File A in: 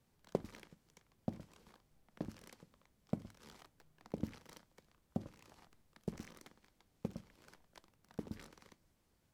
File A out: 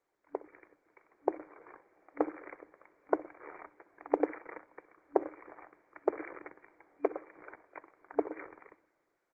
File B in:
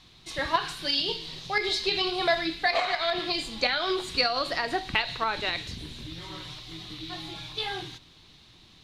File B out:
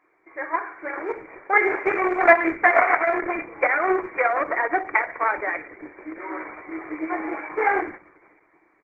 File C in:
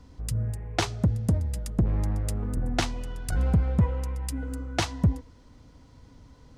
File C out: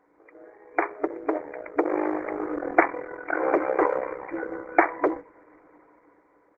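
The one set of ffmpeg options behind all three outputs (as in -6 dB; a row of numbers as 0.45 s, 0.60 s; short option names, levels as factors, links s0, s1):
-filter_complex "[0:a]asplit=2[s0][s1];[s1]adelay=63,lowpass=f=1700:p=1,volume=0.133,asplit=2[s2][s3];[s3]adelay=63,lowpass=f=1700:p=1,volume=0.32,asplit=2[s4][s5];[s5]adelay=63,lowpass=f=1700:p=1,volume=0.32[s6];[s2][s4][s6]amix=inputs=3:normalize=0[s7];[s0][s7]amix=inputs=2:normalize=0,dynaudnorm=f=120:g=17:m=6.31,aeval=exprs='0.944*(cos(1*acos(clip(val(0)/0.944,-1,1)))-cos(1*PI/2))+0.0596*(cos(4*acos(clip(val(0)/0.944,-1,1)))-cos(4*PI/2))+0.211*(cos(6*acos(clip(val(0)/0.944,-1,1)))-cos(6*PI/2))':c=same,afftfilt=real='re*between(b*sr/4096,290,2400)':imag='im*between(b*sr/4096,290,2400)':win_size=4096:overlap=0.75,volume=0.891" -ar 48000 -c:a libopus -b:a 12k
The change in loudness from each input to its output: +10.0 LU, +5.5 LU, +1.5 LU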